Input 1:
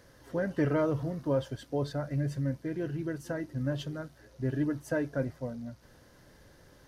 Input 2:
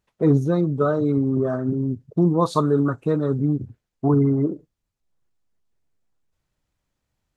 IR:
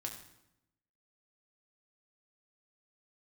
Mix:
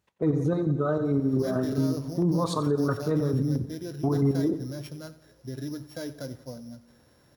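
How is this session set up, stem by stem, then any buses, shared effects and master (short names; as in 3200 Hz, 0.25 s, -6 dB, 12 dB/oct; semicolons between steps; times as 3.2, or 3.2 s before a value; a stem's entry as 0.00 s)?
-2.5 dB, 1.05 s, no send, echo send -17.5 dB, sample sorter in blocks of 8 samples; limiter -25.5 dBFS, peak gain reduction 7.5 dB
-0.5 dB, 0.00 s, send -10 dB, echo send -12.5 dB, chopper 4.5 Hz, depth 60%, duty 40%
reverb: on, RT60 0.85 s, pre-delay 4 ms
echo: feedback echo 89 ms, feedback 56%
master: HPF 57 Hz; limiter -16.5 dBFS, peak gain reduction 9.5 dB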